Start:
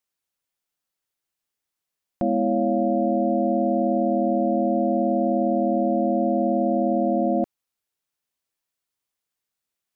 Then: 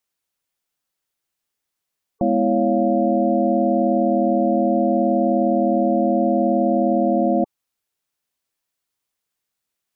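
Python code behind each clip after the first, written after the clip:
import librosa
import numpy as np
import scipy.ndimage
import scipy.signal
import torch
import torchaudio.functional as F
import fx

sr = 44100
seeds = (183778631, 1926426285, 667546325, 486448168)

y = fx.spec_gate(x, sr, threshold_db=-25, keep='strong')
y = y * 10.0 ** (3.5 / 20.0)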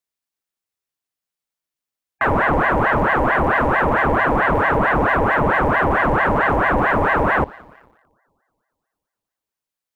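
y = fx.rev_spring(x, sr, rt60_s=2.5, pass_ms=(59,), chirp_ms=35, drr_db=14.0)
y = fx.leveller(y, sr, passes=2)
y = fx.ring_lfo(y, sr, carrier_hz=810.0, swing_pct=70, hz=4.5)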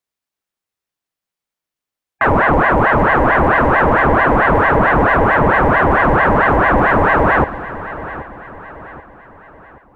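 y = fx.high_shelf(x, sr, hz=3800.0, db=-6.0)
y = fx.echo_feedback(y, sr, ms=780, feedback_pct=44, wet_db=-15)
y = y * 10.0 ** (5.0 / 20.0)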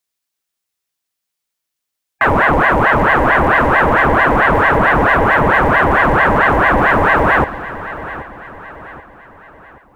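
y = fx.high_shelf(x, sr, hz=2400.0, db=10.0)
y = y * 10.0 ** (-1.0 / 20.0)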